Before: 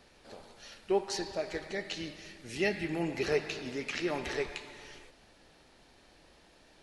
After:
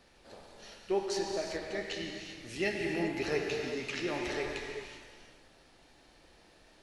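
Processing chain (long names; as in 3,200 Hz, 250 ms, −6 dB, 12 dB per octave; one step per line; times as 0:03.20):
reverb whose tail is shaped and stops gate 420 ms flat, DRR 1.5 dB
level −2.5 dB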